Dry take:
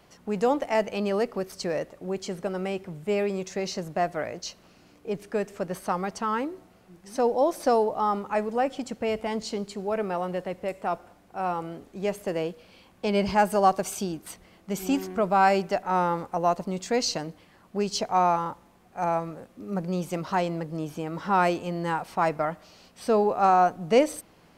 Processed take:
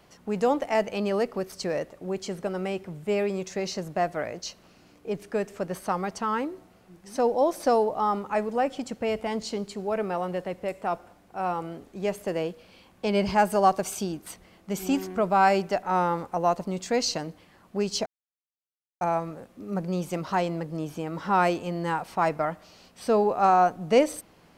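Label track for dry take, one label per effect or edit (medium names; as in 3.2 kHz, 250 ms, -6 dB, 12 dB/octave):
18.060000	19.010000	mute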